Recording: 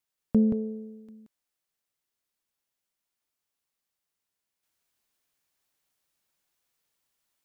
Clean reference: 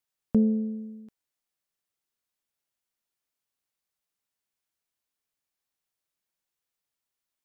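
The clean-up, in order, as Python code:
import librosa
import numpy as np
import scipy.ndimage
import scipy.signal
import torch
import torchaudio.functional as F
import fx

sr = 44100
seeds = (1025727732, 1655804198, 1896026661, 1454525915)

y = fx.fix_echo_inverse(x, sr, delay_ms=177, level_db=-5.0)
y = fx.gain(y, sr, db=fx.steps((0.0, 0.0), (4.63, -6.5)))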